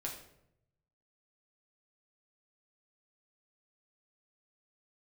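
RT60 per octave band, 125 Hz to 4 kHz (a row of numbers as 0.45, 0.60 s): 1.4, 0.90, 0.85, 0.70, 0.60, 0.50 s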